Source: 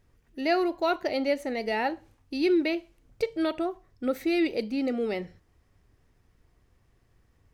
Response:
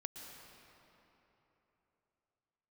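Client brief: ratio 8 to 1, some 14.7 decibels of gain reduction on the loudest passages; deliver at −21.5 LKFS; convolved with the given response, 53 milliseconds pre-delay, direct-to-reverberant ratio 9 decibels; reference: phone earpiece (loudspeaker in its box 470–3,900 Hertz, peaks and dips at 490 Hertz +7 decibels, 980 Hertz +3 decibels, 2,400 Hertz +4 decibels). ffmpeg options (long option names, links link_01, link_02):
-filter_complex "[0:a]acompressor=threshold=-36dB:ratio=8,asplit=2[link_01][link_02];[1:a]atrim=start_sample=2205,adelay=53[link_03];[link_02][link_03]afir=irnorm=-1:irlink=0,volume=-6.5dB[link_04];[link_01][link_04]amix=inputs=2:normalize=0,highpass=470,equalizer=frequency=490:width_type=q:width=4:gain=7,equalizer=frequency=980:width_type=q:width=4:gain=3,equalizer=frequency=2400:width_type=q:width=4:gain=4,lowpass=frequency=3900:width=0.5412,lowpass=frequency=3900:width=1.3066,volume=19.5dB"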